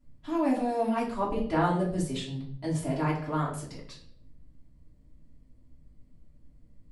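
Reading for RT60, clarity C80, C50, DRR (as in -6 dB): 0.65 s, 10.5 dB, 7.0 dB, -7.5 dB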